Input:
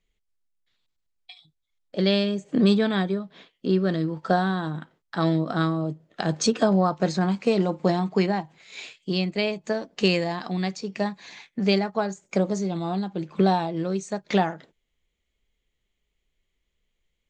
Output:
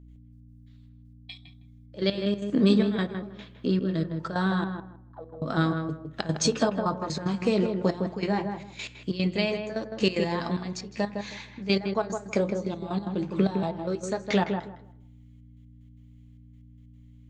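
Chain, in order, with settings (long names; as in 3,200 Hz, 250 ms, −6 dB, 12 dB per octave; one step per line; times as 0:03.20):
notch filter 730 Hz, Q 12
in parallel at +1.5 dB: downward compressor, threshold −30 dBFS, peak gain reduction 14.5 dB
on the sum: flanger 0.19 Hz, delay 7.3 ms, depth 8 ms, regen −59%
0:04.64–0:05.42: envelope filter 460–1,300 Hz, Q 15, down, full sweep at −22.5 dBFS
gate pattern ".x..x.xxxxx." 186 BPM −12 dB
mains hum 60 Hz, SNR 20 dB
on a send: feedback echo with a low-pass in the loop 159 ms, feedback 21%, low-pass 1,600 Hz, level −5.5 dB
on the sum: feedback delay network reverb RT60 0.65 s, high-frequency decay 0.3×, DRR 17.5 dB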